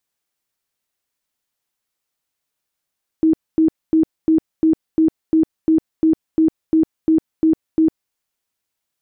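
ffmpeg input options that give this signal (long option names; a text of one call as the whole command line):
ffmpeg -f lavfi -i "aevalsrc='0.316*sin(2*PI*319*mod(t,0.35))*lt(mod(t,0.35),33/319)':duration=4.9:sample_rate=44100" out.wav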